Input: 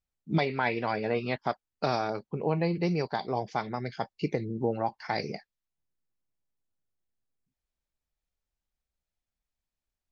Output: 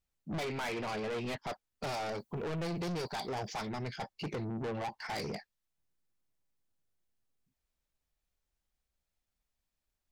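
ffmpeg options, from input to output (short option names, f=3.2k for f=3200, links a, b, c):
-filter_complex "[0:a]asettb=1/sr,asplit=3[a][b][c];[a]atrim=end=2.064[d];[b]atrim=start=2.06:end=3.68,asetpts=PTS-STARTPTS,afade=t=in:d=0.004:c=qsin,afade=t=out:st=1.616:d=0.004:c=qsin,aemphasis=mode=production:type=50kf[e];[c]atrim=start=3.676[f];[d][e]acrossfade=d=0.004:c1=hsin:c2=qsin[g];[g][f]acrossfade=d=0.004:c1=qsin:c2=hsin,asoftclip=type=tanh:threshold=-36.5dB,volume=2.5dB"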